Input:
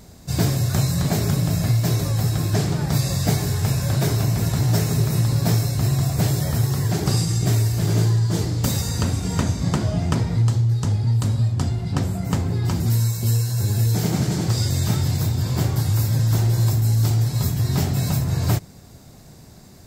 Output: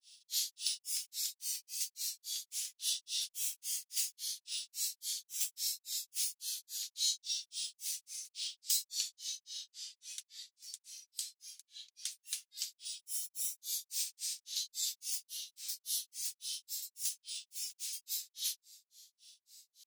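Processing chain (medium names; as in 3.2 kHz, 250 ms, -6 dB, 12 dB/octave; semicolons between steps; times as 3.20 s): granulator 239 ms, grains 3.6 per s, pitch spread up and down by 7 st; inverse Chebyshev high-pass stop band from 580 Hz, stop band 80 dB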